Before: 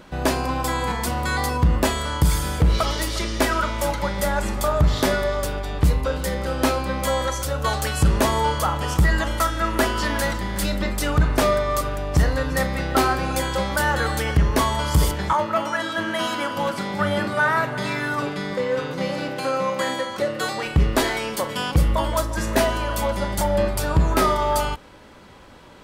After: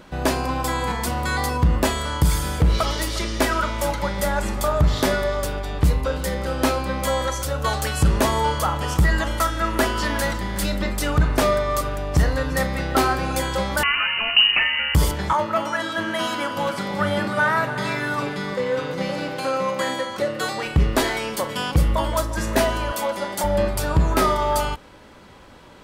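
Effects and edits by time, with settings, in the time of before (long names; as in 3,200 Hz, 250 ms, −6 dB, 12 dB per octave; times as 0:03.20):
0:13.83–0:14.95: voice inversion scrambler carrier 2,900 Hz
0:16.28–0:19.71: single-tap delay 301 ms −12.5 dB
0:22.92–0:23.44: high-pass filter 270 Hz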